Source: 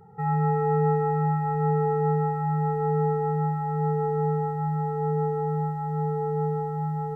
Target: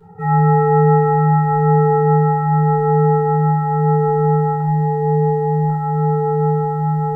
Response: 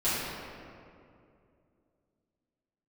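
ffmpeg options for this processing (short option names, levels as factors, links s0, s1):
-filter_complex "[0:a]asettb=1/sr,asplit=3[s0][s1][s2];[s0]atrim=end=4.604[s3];[s1]atrim=start=4.6:end=5.7,asetpts=PTS-STARTPTS,afade=t=in:d=0.004:c=qsin,afade=t=out:st=1.096:d=0.004:c=qsin,asuperstop=centerf=1200:order=4:qfactor=1.8[s4];[s2]atrim=start=5.696[s5];[s3][s4]acrossfade=d=0.004:c1=hsin:c2=qsin[s6];[s6][s5]acrossfade=d=0.004:c1=qsin:c2=hsin[s7];[1:a]atrim=start_sample=2205,atrim=end_sample=3528[s8];[s7][s8]afir=irnorm=-1:irlink=0"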